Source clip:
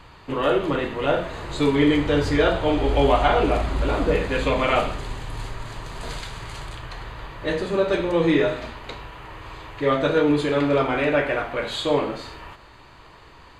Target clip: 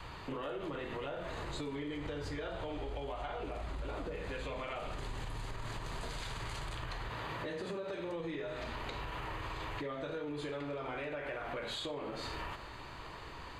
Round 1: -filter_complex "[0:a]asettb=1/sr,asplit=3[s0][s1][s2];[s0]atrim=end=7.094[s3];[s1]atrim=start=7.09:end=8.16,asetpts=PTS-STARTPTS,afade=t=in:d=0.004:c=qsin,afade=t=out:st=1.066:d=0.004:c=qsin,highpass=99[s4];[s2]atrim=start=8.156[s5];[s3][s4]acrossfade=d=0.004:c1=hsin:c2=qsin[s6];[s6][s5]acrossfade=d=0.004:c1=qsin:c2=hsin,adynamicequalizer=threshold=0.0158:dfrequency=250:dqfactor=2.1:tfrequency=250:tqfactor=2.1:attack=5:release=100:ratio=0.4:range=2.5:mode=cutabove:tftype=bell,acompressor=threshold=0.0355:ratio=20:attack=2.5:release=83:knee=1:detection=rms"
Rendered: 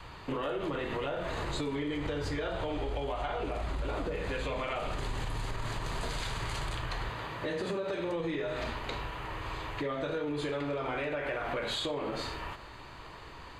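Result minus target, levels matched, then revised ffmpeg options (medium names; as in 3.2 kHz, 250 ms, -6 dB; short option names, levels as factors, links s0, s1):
compression: peak gain reduction -6 dB
-filter_complex "[0:a]asettb=1/sr,asplit=3[s0][s1][s2];[s0]atrim=end=7.094[s3];[s1]atrim=start=7.09:end=8.16,asetpts=PTS-STARTPTS,afade=t=in:d=0.004:c=qsin,afade=t=out:st=1.066:d=0.004:c=qsin,highpass=99[s4];[s2]atrim=start=8.156[s5];[s3][s4]acrossfade=d=0.004:c1=hsin:c2=qsin[s6];[s6][s5]acrossfade=d=0.004:c1=qsin:c2=hsin,adynamicequalizer=threshold=0.0158:dfrequency=250:dqfactor=2.1:tfrequency=250:tqfactor=2.1:attack=5:release=100:ratio=0.4:range=2.5:mode=cutabove:tftype=bell,acompressor=threshold=0.0168:ratio=20:attack=2.5:release=83:knee=1:detection=rms"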